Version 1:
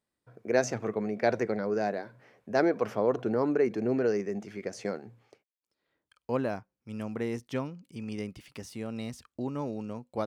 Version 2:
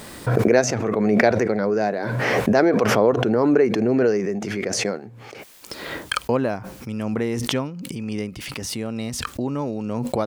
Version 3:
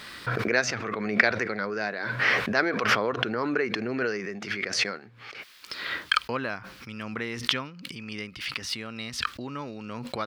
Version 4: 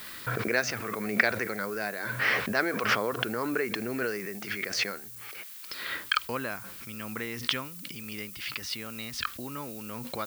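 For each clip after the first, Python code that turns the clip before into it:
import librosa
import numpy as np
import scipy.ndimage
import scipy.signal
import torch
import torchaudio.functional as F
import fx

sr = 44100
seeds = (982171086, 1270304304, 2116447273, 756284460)

y1 = fx.pre_swell(x, sr, db_per_s=21.0)
y1 = F.gain(torch.from_numpy(y1), 7.5).numpy()
y2 = fx.band_shelf(y1, sr, hz=2400.0, db=13.5, octaves=2.5)
y2 = F.gain(torch.from_numpy(y2), -11.5).numpy()
y3 = fx.dmg_noise_colour(y2, sr, seeds[0], colour='violet', level_db=-42.0)
y3 = F.gain(torch.from_numpy(y3), -3.0).numpy()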